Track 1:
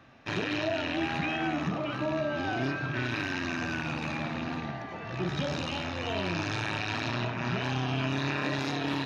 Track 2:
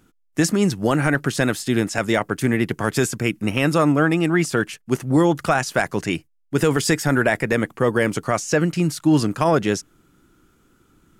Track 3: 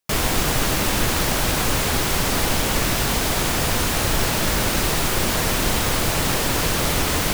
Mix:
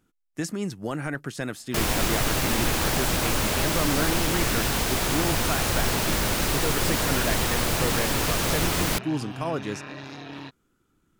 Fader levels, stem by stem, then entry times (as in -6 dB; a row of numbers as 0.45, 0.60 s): -8.0, -11.5, -4.0 dB; 1.45, 0.00, 1.65 s